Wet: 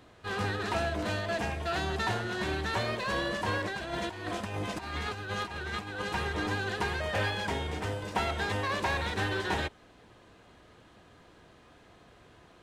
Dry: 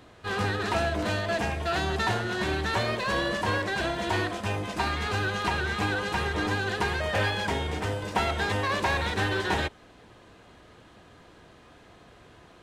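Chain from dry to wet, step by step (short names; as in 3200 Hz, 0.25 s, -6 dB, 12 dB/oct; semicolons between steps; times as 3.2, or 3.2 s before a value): 3.64–6.02 negative-ratio compressor -31 dBFS, ratio -0.5; gain -4 dB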